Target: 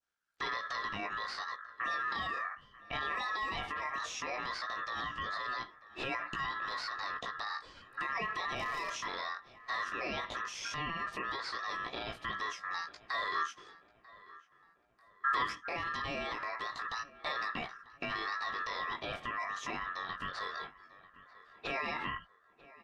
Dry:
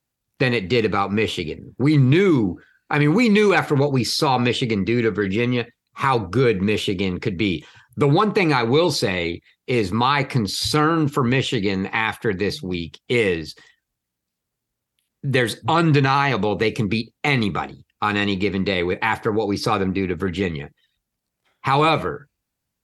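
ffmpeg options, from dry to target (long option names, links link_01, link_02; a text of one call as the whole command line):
ffmpeg -i in.wav -filter_complex "[0:a]flanger=delay=16.5:depth=5:speed=0.17,acrossover=split=250|690|3600[link_01][link_02][link_03][link_04];[link_01]acompressor=threshold=-35dB:ratio=4[link_05];[link_02]acompressor=threshold=-24dB:ratio=4[link_06];[link_03]acompressor=threshold=-29dB:ratio=4[link_07];[link_04]acompressor=threshold=-48dB:ratio=4[link_08];[link_05][link_06][link_07][link_08]amix=inputs=4:normalize=0,aeval=exprs='val(0)*sin(2*PI*1500*n/s)':channel_layout=same,lowpass=6700,asplit=3[link_09][link_10][link_11];[link_09]afade=type=out:start_time=8.56:duration=0.02[link_12];[link_10]aeval=exprs='clip(val(0),-1,0.0631)':channel_layout=same,afade=type=in:start_time=8.56:duration=0.02,afade=type=out:start_time=9.03:duration=0.02[link_13];[link_11]afade=type=in:start_time=9.03:duration=0.02[link_14];[link_12][link_13][link_14]amix=inputs=3:normalize=0,alimiter=limit=-24dB:level=0:latency=1:release=42,asettb=1/sr,asplit=3[link_15][link_16][link_17];[link_15]atrim=end=13.354[link_18];[link_16]atrim=start=13.35:end=15.45,asetpts=PTS-STARTPTS,afade=type=in:duration=0.004:curve=qsin,afade=type=out:start_time=2.096:duration=0.004:curve=qsin,equalizer=frequency=1200:width=1.5:gain=8.5[link_19];[link_17]atrim=start=15.446[link_20];[link_18][link_19]acrossfade=duration=0.004:curve1=hsin:curve2=qsin[link_21];[link_21][link_20]acrossfade=duration=0.004:curve1=qsin:curve2=hsin,asplit=2[link_22][link_23];[link_23]adelay=942,lowpass=frequency=2000:poles=1,volume=-19.5dB,asplit=2[link_24][link_25];[link_25]adelay=942,lowpass=frequency=2000:poles=1,volume=0.48,asplit=2[link_26][link_27];[link_27]adelay=942,lowpass=frequency=2000:poles=1,volume=0.48,asplit=2[link_28][link_29];[link_29]adelay=942,lowpass=frequency=2000:poles=1,volume=0.48[link_30];[link_22][link_24][link_26][link_28][link_30]amix=inputs=5:normalize=0,adynamicequalizer=threshold=0.00562:dfrequency=2000:dqfactor=1.1:tfrequency=2000:tqfactor=1.1:attack=5:release=100:ratio=0.375:range=2.5:mode=cutabove:tftype=bell,volume=-1.5dB" out.wav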